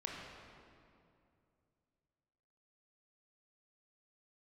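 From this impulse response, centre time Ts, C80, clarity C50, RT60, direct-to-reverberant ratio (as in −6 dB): 115 ms, 1.0 dB, −0.5 dB, 2.5 s, −2.5 dB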